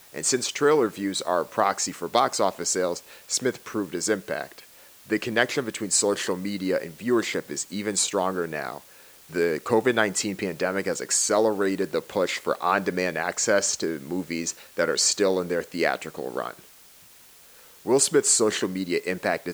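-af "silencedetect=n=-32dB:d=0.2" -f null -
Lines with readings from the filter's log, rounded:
silence_start: 2.99
silence_end: 3.30 | silence_duration: 0.31
silence_start: 4.58
silence_end: 5.10 | silence_duration: 0.51
silence_start: 8.78
silence_end: 9.33 | silence_duration: 0.55
silence_start: 14.51
silence_end: 14.77 | silence_duration: 0.26
silence_start: 16.51
silence_end: 17.86 | silence_duration: 1.35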